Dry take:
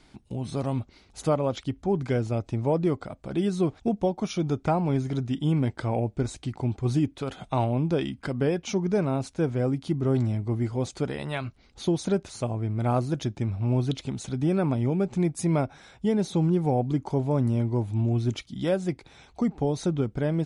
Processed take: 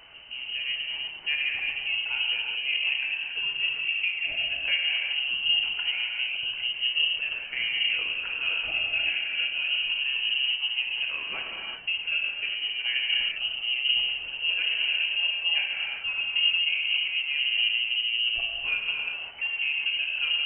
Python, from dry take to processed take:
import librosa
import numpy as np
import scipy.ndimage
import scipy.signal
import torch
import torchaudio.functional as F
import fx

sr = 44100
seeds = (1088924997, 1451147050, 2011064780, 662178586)

y = x + 0.5 * 10.0 ** (-39.5 / 20.0) * np.sign(x)
y = fx.rev_gated(y, sr, seeds[0], gate_ms=420, shape='flat', drr_db=-2.0)
y = fx.freq_invert(y, sr, carrier_hz=3000)
y = y * 10.0 ** (-7.0 / 20.0)